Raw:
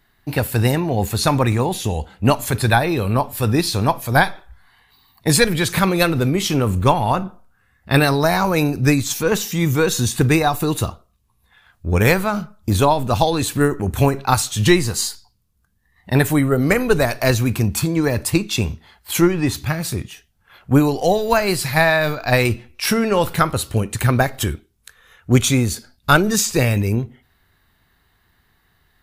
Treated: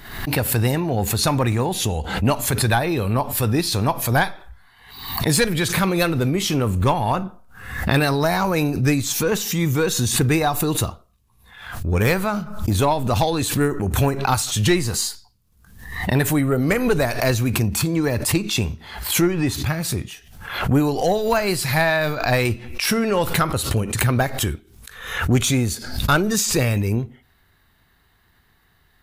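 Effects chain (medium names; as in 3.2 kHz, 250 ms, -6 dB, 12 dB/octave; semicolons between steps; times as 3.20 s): in parallel at -3 dB: compression, threshold -23 dBFS, peak gain reduction 14.5 dB; on the sum: saturation -4 dBFS, distortion -22 dB; swell ahead of each attack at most 70 dB/s; trim -4 dB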